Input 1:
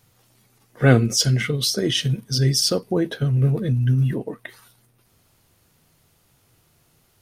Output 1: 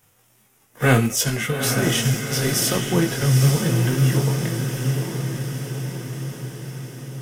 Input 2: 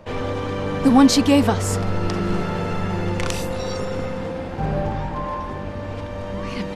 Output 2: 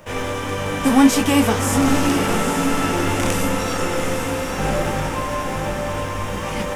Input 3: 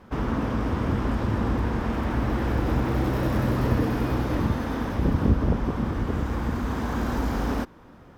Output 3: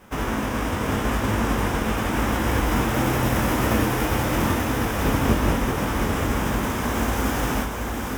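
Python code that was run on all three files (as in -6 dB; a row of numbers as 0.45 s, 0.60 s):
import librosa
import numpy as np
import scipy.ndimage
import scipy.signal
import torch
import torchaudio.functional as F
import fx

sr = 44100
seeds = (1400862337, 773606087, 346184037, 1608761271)

p1 = fx.envelope_flatten(x, sr, power=0.6)
p2 = fx.peak_eq(p1, sr, hz=4300.0, db=-11.0, octaves=0.39)
p3 = np.clip(p2, -10.0 ** (-17.5 / 20.0), 10.0 ** (-17.5 / 20.0))
p4 = p2 + (p3 * librosa.db_to_amplitude(-7.0))
p5 = fx.chorus_voices(p4, sr, voices=2, hz=0.8, base_ms=21, depth_ms=2.8, mix_pct=35)
y = fx.echo_diffused(p5, sr, ms=858, feedback_pct=61, wet_db=-5)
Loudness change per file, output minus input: -1.0 LU, +2.0 LU, +3.0 LU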